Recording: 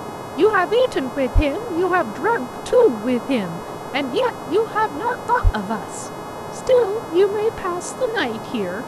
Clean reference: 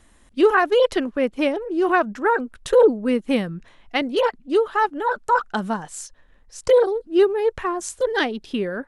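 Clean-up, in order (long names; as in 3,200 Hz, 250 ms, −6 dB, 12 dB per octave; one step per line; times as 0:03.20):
hum removal 421.6 Hz, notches 32
high-pass at the plosives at 0:01.34/0:05.43
noise reduction from a noise print 20 dB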